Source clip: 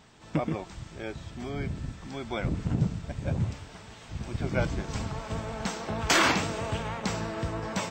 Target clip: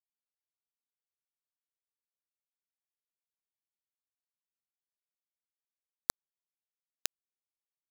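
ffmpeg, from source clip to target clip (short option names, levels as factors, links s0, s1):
-af "acompressor=threshold=0.0224:ratio=8,acrusher=bits=3:mix=0:aa=0.000001,volume=2.99"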